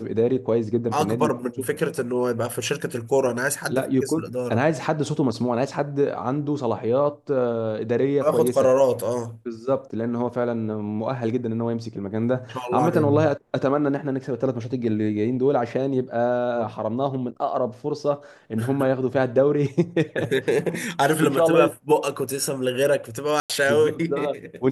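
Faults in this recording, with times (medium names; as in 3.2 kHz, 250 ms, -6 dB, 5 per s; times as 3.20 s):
23.40–23.50 s: dropout 97 ms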